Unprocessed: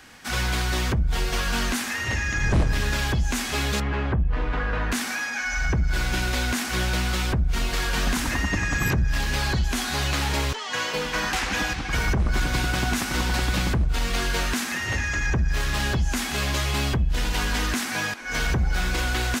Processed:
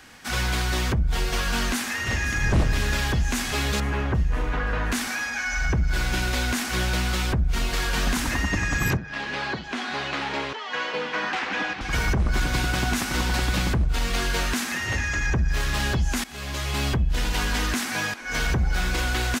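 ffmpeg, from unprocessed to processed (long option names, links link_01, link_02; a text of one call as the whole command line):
ffmpeg -i in.wav -filter_complex "[0:a]asplit=2[link_01][link_02];[link_02]afade=type=in:start_time=1.54:duration=0.01,afade=type=out:start_time=2.48:duration=0.01,aecho=0:1:520|1040|1560|2080|2600|3120|3640|4160|4680|5200:0.266073|0.186251|0.130376|0.0912629|0.063884|0.0447188|0.0313032|0.0219122|0.0153386|0.010737[link_03];[link_01][link_03]amix=inputs=2:normalize=0,asettb=1/sr,asplit=3[link_04][link_05][link_06];[link_04]atrim=end=8.974[link_07];[link_05]atrim=start=8.97:end=11.81,asetpts=PTS-STARTPTS,afade=type=in:duration=0.004:curve=qsin,afade=type=out:start_time=2.836:duration=0.004:curve=qsin,highpass=240,lowpass=3200[link_08];[link_06]atrim=start=11.806[link_09];[link_07][link_08]acrossfade=duration=0.004:curve1=hsin:curve2=qsin[link_10];[link_10][link_09]acrossfade=duration=0.004:curve1=qsin:curve2=hsin,asplit=2[link_11][link_12];[link_11]atrim=end=16.24,asetpts=PTS-STARTPTS,afade=type=out:start_time=16.236:duration=0.004:curve=hsin:silence=0.141254[link_13];[link_12]atrim=start=16.24,asetpts=PTS-STARTPTS,afade=type=in:duration=0.64:silence=0.141254[link_14];[link_13][link_14]concat=n=2:v=0:a=1" out.wav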